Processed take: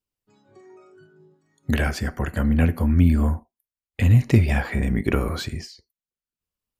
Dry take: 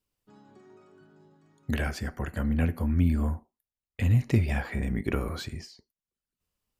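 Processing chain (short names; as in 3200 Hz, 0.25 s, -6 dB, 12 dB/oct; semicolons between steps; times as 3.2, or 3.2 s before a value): spectral noise reduction 13 dB; gain +7 dB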